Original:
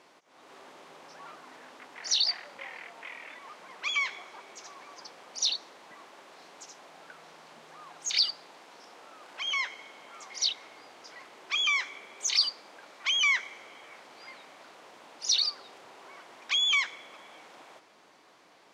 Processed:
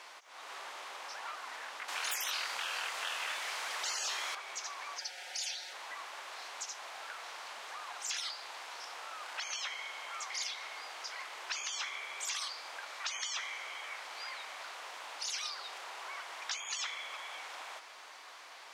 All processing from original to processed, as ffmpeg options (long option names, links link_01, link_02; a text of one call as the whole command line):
ffmpeg -i in.wav -filter_complex "[0:a]asettb=1/sr,asplit=3[link_01][link_02][link_03];[link_01]atrim=end=1.884[link_04];[link_02]atrim=start=1.88:end=4.35,asetpts=PTS-STARTPTS,afade=type=in:duration=0.004:curve=qsin,afade=type=out:start_time=2.466:duration=0.004:curve=qsin,highshelf=frequency=3700:gain=7.5,acontrast=79[link_05];[link_03]atrim=start=4.346[link_06];[link_04][link_05]acrossfade=duration=0.004:curve1=hsin:curve2=qsin[link_07];[link_07][link_06]acrossfade=duration=0.004:curve1=qsin:curve2=hsin,asettb=1/sr,asplit=3[link_08][link_09][link_10];[link_08]atrim=end=4.984[link_11];[link_09]atrim=start=4.98:end=5.73,asetpts=PTS-STARTPTS,afade=type=in:duration=0.004:curve=qsin,afade=type=out:start_time=0.746:duration=0.004:curve=qsin,asuperstop=centerf=1100:order=4:qfactor=2,lowshelf=frequency=440:gain=-10.5,aecho=1:1:5.5:0.8,atrim=end_sample=33075[link_12];[link_10]atrim=start=5.726[link_13];[link_11][link_12]acrossfade=duration=0.004:curve1=hsin:curve2=qsin[link_14];[link_14][link_13]acrossfade=duration=0.004:curve1=qsin:curve2=hsin,afftfilt=real='re*lt(hypot(re,im),0.0398)':imag='im*lt(hypot(re,im),0.0398)':win_size=1024:overlap=0.75,highpass=920,acompressor=threshold=-54dB:ratio=1.5,volume=10dB" out.wav